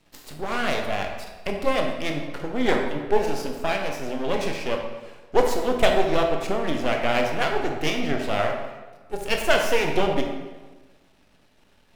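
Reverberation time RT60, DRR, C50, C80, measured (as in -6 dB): 1.3 s, 2.0 dB, 4.0 dB, 6.5 dB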